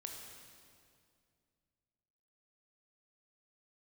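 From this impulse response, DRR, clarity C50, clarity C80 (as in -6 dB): 1.0 dB, 2.5 dB, 4.0 dB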